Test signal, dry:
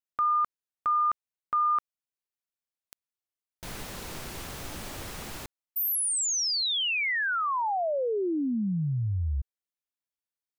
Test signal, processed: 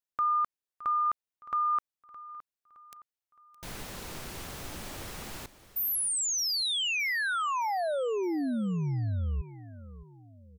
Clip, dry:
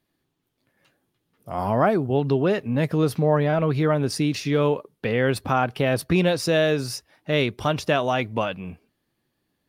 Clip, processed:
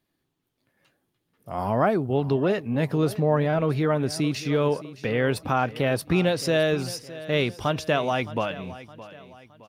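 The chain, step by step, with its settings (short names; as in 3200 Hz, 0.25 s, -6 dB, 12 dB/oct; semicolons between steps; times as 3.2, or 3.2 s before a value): feedback echo 0.616 s, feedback 43%, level -16.5 dB; gain -2 dB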